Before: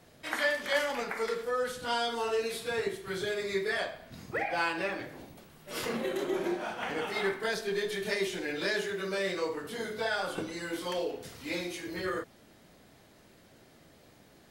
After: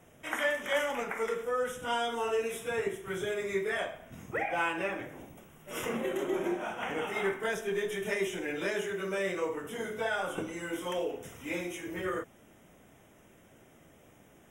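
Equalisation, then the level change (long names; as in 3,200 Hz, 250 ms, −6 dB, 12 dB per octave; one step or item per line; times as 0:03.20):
Butterworth band-reject 4,400 Hz, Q 1.8
notch filter 1,700 Hz, Q 22
0.0 dB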